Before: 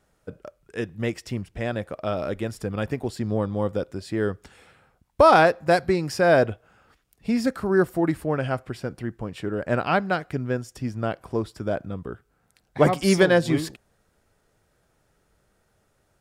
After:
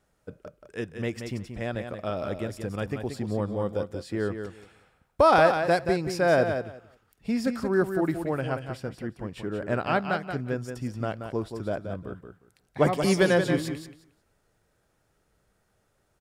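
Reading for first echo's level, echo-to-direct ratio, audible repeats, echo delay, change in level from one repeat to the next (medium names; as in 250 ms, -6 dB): -7.5 dB, -7.5 dB, 2, 179 ms, -15.5 dB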